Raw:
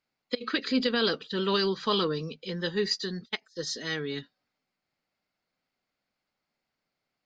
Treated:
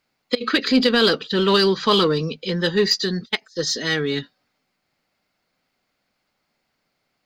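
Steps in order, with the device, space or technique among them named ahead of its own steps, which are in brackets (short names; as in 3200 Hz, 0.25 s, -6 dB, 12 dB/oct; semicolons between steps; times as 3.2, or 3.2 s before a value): parallel distortion (in parallel at -8.5 dB: hard clip -28.5 dBFS, distortion -7 dB); on the sum: gain +8 dB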